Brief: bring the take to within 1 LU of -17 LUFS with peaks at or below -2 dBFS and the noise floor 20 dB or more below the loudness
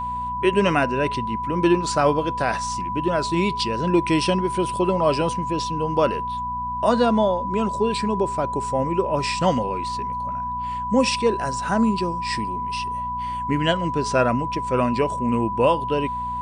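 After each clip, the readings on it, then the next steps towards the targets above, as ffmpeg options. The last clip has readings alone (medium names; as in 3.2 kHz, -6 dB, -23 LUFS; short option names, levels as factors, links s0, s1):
hum 60 Hz; highest harmonic 240 Hz; hum level -35 dBFS; steady tone 990 Hz; tone level -25 dBFS; loudness -22.5 LUFS; peak level -6.0 dBFS; loudness target -17.0 LUFS
-> -af "bandreject=f=60:t=h:w=4,bandreject=f=120:t=h:w=4,bandreject=f=180:t=h:w=4,bandreject=f=240:t=h:w=4"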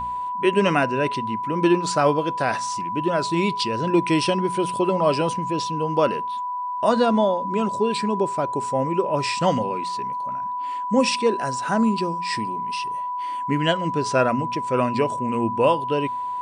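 hum not found; steady tone 990 Hz; tone level -25 dBFS
-> -af "bandreject=f=990:w=30"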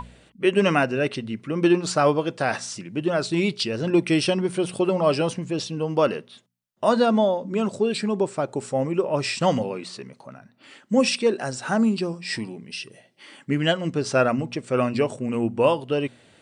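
steady tone not found; loudness -23.5 LUFS; peak level -7.0 dBFS; loudness target -17.0 LUFS
-> -af "volume=2.11,alimiter=limit=0.794:level=0:latency=1"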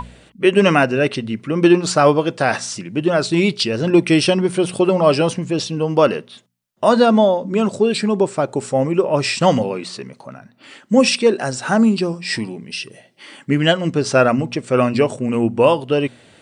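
loudness -17.0 LUFS; peak level -2.0 dBFS; noise floor -51 dBFS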